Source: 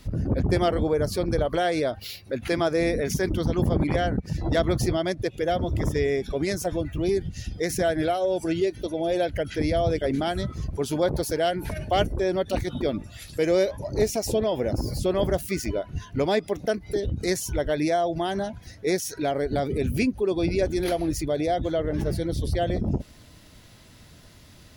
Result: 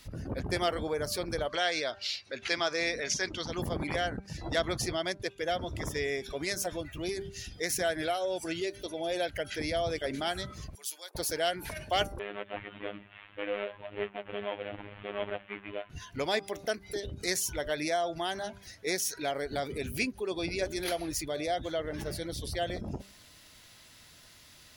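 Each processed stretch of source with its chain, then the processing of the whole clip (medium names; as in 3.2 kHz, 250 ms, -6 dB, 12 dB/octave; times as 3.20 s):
1.49–3.51 s: low-pass 6.4 kHz 24 dB/octave + tilt EQ +2 dB/octave
4.10–5.87 s: low-pass 11 kHz + expander -35 dBFS
10.75–11.15 s: brick-wall FIR high-pass 290 Hz + differentiator
12.19–15.90 s: CVSD coder 16 kbps + bass shelf 130 Hz -9 dB + robot voice 102 Hz
whole clip: tilt shelf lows -7 dB, about 670 Hz; de-hum 197.4 Hz, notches 8; trim -6.5 dB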